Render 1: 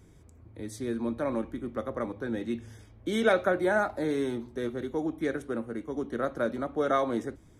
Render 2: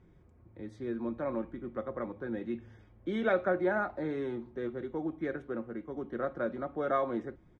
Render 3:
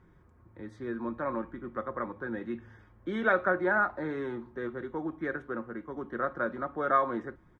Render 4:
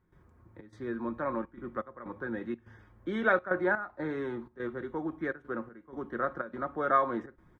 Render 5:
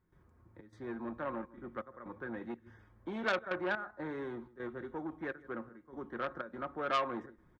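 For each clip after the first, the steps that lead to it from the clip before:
low-pass 2.4 kHz 12 dB/octave; comb 5.6 ms, depth 31%; trim -4.5 dB
high-order bell 1.3 kHz +8 dB 1.2 oct
trance gate ".xxxx.xxxxxx.xx." 124 bpm -12 dB
delay 157 ms -23 dB; transformer saturation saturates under 2 kHz; trim -4.5 dB

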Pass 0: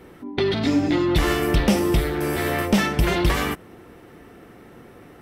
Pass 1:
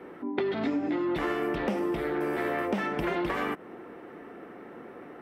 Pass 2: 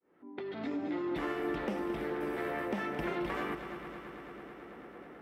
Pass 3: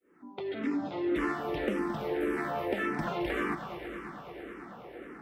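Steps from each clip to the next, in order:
three-band isolator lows -20 dB, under 200 Hz, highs -17 dB, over 2.4 kHz; compression, threshold -29 dBFS, peak gain reduction 11.5 dB; trim +2.5 dB
fade-in on the opening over 0.81 s; multi-head delay 110 ms, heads second and third, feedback 73%, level -11.5 dB; trim -6.5 dB
barber-pole phaser -1.8 Hz; trim +6.5 dB

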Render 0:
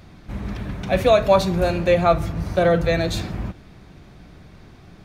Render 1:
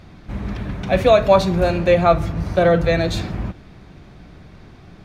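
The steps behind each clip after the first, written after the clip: treble shelf 8.1 kHz -9 dB; trim +2.5 dB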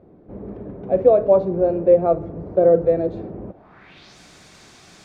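modulation noise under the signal 33 dB; RIAA curve recording; low-pass sweep 450 Hz -> 7.5 kHz, 3.47–4.18 s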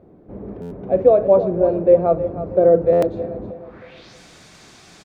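feedback delay 315 ms, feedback 38%, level -12 dB; buffer glitch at 0.61/2.92 s, samples 512, times 8; trim +1 dB

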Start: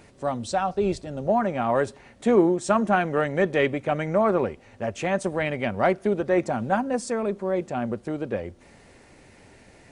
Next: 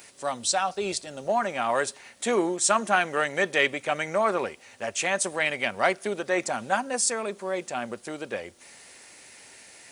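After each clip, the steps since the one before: tilt EQ +4.5 dB/octave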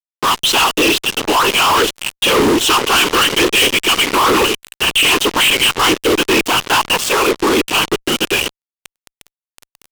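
FFT filter 120 Hz 0 dB, 190 Hz -29 dB, 270 Hz -8 dB, 390 Hz +5 dB, 590 Hz -25 dB, 1 kHz +4 dB, 2 kHz -11 dB, 2.9 kHz +15 dB, 4.4 kHz -12 dB, 12 kHz -25 dB; whisper effect; fuzz box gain 47 dB, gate -39 dBFS; trim +3 dB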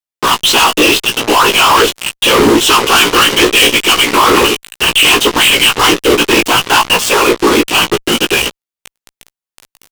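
doubling 17 ms -4.5 dB; trim +3 dB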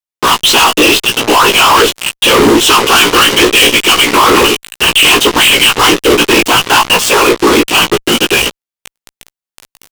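waveshaping leveller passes 1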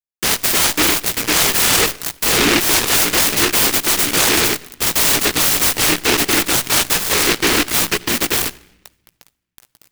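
simulated room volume 2600 m³, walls furnished, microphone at 0.46 m; delay time shaken by noise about 2.1 kHz, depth 0.45 ms; trim -8 dB

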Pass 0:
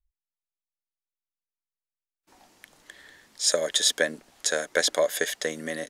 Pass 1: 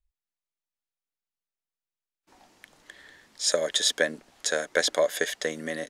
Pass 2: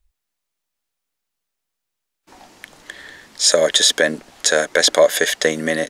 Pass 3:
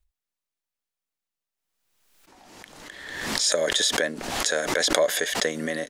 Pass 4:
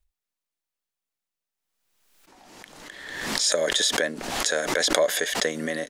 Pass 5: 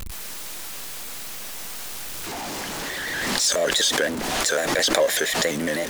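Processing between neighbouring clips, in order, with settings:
treble shelf 8.6 kHz -7.5 dB
loudness maximiser +13.5 dB; trim -1 dB
swell ahead of each attack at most 43 dB/s; trim -9.5 dB
peaking EQ 77 Hz -5.5 dB 0.77 oct
jump at every zero crossing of -26 dBFS; crackling interface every 0.62 s, samples 512, repeat, from 0.43 s; vibrato with a chosen wave square 5.9 Hz, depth 100 cents

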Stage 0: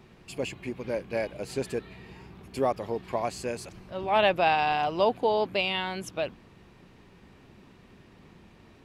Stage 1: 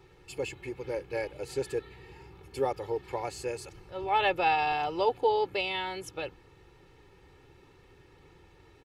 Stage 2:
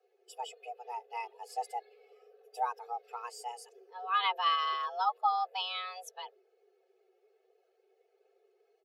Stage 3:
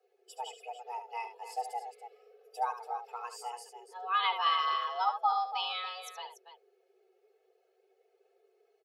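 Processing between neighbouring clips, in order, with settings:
comb 2.3 ms, depth 89%; trim -5 dB
expander on every frequency bin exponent 1.5; frequency shift +360 Hz; trim -2 dB
loudspeakers at several distances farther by 25 m -10 dB, 98 m -11 dB

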